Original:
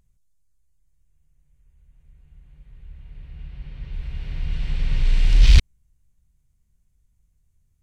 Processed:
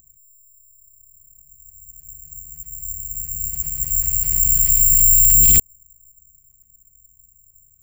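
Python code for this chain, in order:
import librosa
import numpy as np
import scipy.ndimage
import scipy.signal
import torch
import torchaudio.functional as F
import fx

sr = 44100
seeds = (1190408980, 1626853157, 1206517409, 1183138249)

y = (np.kron(scipy.signal.resample_poly(x, 1, 6), np.eye(6)[0]) * 6)[:len(x)]
y = 10.0 ** (-4.5 / 20.0) * np.tanh(y / 10.0 ** (-4.5 / 20.0))
y = F.gain(torch.from_numpy(y), 2.0).numpy()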